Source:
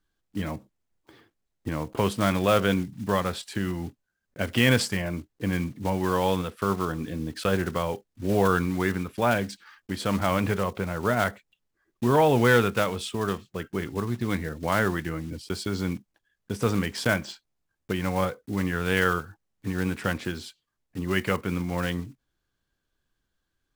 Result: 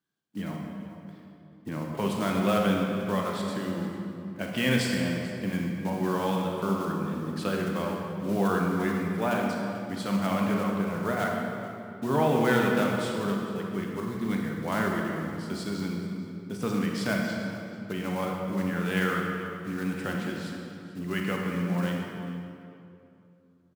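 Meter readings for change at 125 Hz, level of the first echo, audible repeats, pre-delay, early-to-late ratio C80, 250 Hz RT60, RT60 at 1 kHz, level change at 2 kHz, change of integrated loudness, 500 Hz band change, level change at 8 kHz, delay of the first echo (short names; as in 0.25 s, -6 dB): -3.0 dB, -16.5 dB, 1, 31 ms, 2.0 dB, 3.2 s, 2.6 s, -3.5 dB, -2.5 dB, -3.0 dB, -4.5 dB, 0.44 s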